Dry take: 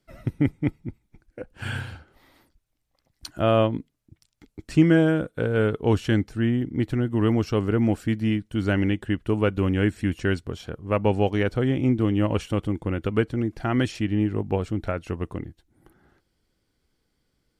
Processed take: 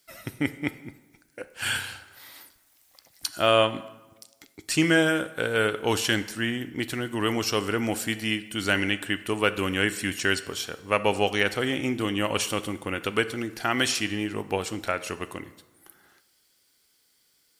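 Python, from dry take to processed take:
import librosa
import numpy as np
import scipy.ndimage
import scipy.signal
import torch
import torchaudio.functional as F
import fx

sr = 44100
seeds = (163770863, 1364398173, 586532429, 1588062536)

y = fx.tilt_eq(x, sr, slope=4.5)
y = fx.rev_plate(y, sr, seeds[0], rt60_s=1.1, hf_ratio=0.7, predelay_ms=0, drr_db=12.0)
y = fx.band_squash(y, sr, depth_pct=40, at=(1.77, 3.33))
y = y * librosa.db_to_amplitude(2.5)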